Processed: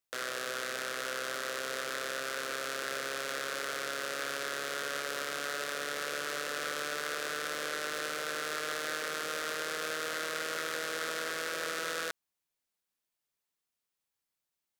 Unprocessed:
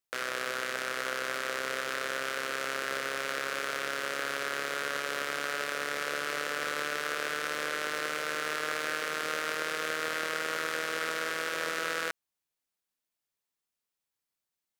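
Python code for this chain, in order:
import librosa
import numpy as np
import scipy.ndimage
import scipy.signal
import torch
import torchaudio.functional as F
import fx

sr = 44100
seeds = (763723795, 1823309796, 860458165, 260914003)

y = fx.transformer_sat(x, sr, knee_hz=3700.0)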